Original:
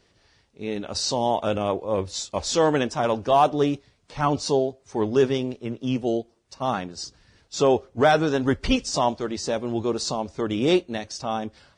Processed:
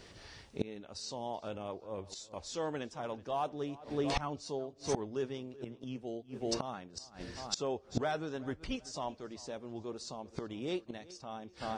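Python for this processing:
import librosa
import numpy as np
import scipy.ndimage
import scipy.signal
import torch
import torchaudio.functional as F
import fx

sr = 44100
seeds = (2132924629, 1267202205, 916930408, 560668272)

y = fx.echo_filtered(x, sr, ms=379, feedback_pct=38, hz=4000.0, wet_db=-20)
y = fx.gate_flip(y, sr, shuts_db=-27.0, range_db=-25)
y = F.gain(torch.from_numpy(y), 8.0).numpy()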